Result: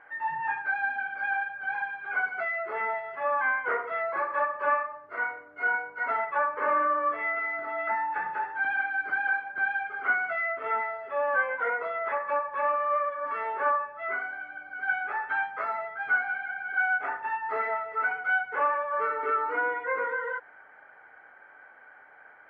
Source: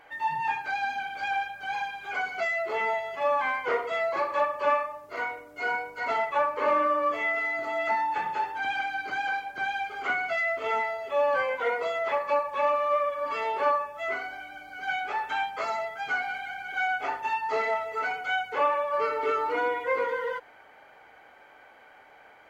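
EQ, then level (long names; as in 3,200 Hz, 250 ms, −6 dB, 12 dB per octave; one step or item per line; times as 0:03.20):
high-pass filter 87 Hz 6 dB per octave
low-pass with resonance 1,600 Hz, resonance Q 3.5
−5.5 dB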